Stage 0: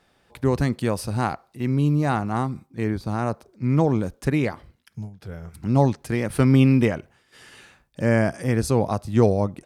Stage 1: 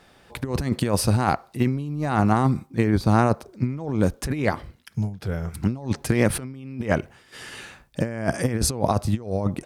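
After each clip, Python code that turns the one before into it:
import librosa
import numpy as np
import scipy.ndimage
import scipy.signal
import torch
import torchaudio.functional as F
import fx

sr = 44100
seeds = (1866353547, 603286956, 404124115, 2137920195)

y = fx.over_compress(x, sr, threshold_db=-25.0, ratio=-0.5)
y = F.gain(torch.from_numpy(y), 3.5).numpy()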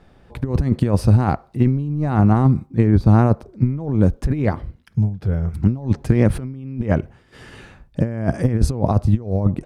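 y = fx.tilt_eq(x, sr, slope=-3.0)
y = F.gain(torch.from_numpy(y), -1.5).numpy()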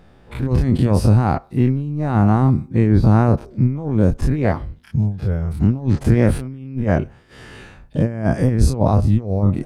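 y = fx.spec_dilate(x, sr, span_ms=60)
y = F.gain(torch.from_numpy(y), -2.0).numpy()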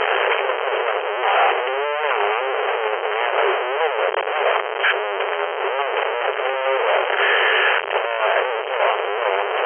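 y = np.sign(x) * np.sqrt(np.mean(np.square(x)))
y = fx.brickwall_bandpass(y, sr, low_hz=380.0, high_hz=3200.0)
y = F.gain(torch.from_numpy(y), 4.0).numpy()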